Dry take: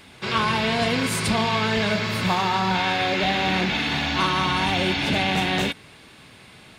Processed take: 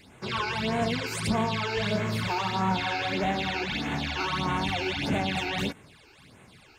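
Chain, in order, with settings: phase shifter stages 12, 1.6 Hz, lowest notch 180–4800 Hz; 1.71–3.18 s: doubling 36 ms -9 dB; trim -4 dB

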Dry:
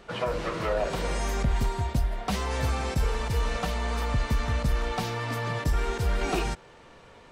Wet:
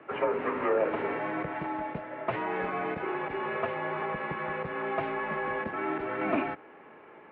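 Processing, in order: mistuned SSB -76 Hz 280–2500 Hz; trim +1.5 dB

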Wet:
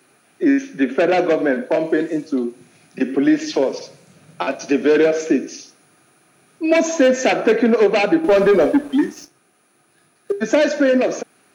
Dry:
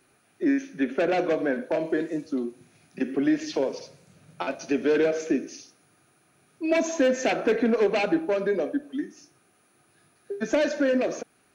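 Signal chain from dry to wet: high-pass 140 Hz 12 dB/octave; 8.24–10.32 s: waveshaping leveller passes 2; trim +8 dB

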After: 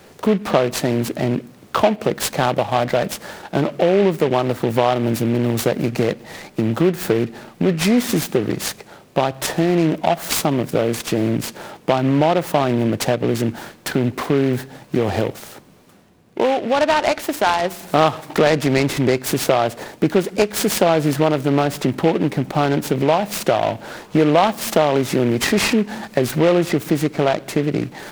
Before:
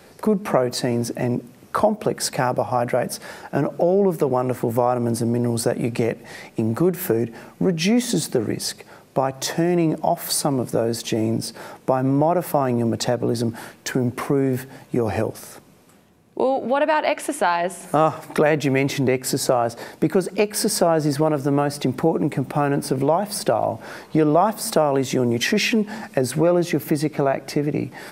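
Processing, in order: delay time shaken by noise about 1.9 kHz, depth 0.049 ms; trim +2.5 dB

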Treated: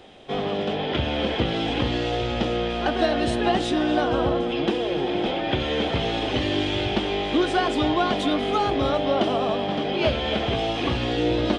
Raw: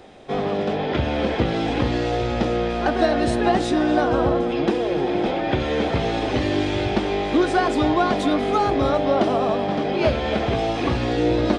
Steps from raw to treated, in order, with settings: peaking EQ 3.1 kHz +9.5 dB 0.48 oct; trim -3 dB

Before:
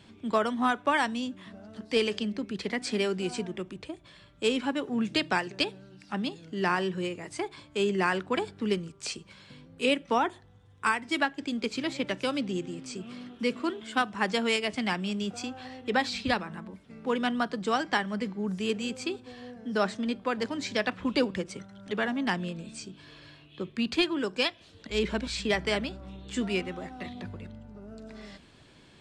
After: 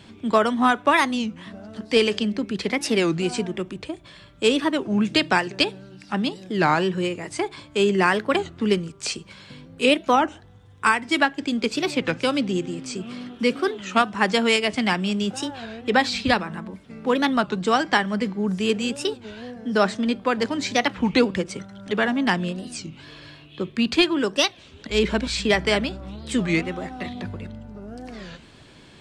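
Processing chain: warped record 33 1/3 rpm, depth 250 cents; trim +7.5 dB

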